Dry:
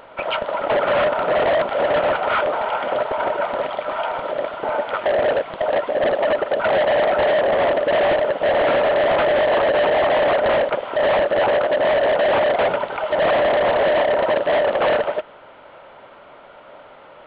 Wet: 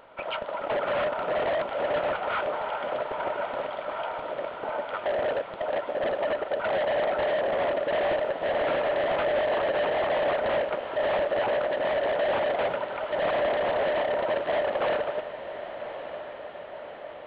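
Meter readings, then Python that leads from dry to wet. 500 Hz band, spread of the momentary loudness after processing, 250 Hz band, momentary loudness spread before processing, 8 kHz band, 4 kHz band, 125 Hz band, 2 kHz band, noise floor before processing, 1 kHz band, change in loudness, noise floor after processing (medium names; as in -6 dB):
-8.5 dB, 9 LU, -8.5 dB, 7 LU, no reading, -8.5 dB, -8.5 dB, -8.5 dB, -44 dBFS, -8.5 dB, -9.0 dB, -40 dBFS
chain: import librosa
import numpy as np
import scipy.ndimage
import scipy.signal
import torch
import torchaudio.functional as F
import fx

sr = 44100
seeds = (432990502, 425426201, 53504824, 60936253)

y = fx.rattle_buzz(x, sr, strikes_db=-35.0, level_db=-35.0)
y = fx.echo_diffused(y, sr, ms=1156, feedback_pct=62, wet_db=-12)
y = y * 10.0 ** (-9.0 / 20.0)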